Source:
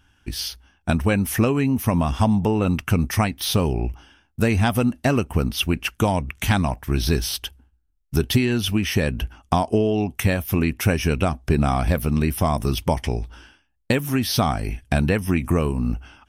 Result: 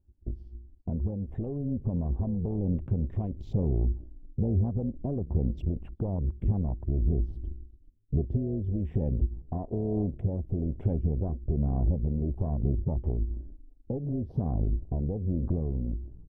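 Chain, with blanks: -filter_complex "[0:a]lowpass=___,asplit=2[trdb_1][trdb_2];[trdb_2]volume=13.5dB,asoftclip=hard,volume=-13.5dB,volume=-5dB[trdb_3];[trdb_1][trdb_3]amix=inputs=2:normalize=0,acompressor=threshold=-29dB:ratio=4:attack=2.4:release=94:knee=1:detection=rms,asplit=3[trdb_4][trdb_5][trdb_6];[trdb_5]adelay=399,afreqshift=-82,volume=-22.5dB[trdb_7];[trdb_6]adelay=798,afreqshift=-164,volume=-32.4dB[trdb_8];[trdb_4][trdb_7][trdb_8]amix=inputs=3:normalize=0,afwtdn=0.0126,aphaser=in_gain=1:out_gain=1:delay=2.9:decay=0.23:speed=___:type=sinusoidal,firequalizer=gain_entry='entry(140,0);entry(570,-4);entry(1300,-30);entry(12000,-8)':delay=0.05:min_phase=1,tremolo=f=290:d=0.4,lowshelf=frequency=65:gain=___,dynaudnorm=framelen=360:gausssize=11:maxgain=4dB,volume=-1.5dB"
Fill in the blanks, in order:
1.6k, 1.1, 8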